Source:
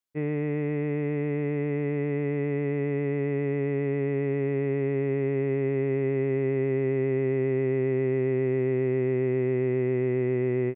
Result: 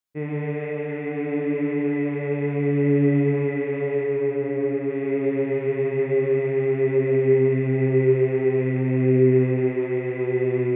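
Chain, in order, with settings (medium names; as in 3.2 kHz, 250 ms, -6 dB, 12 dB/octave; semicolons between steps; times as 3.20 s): 4.01–4.90 s: treble shelf 2.5 kHz -10.5 dB; Schroeder reverb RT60 2.1 s, combs from 31 ms, DRR -3 dB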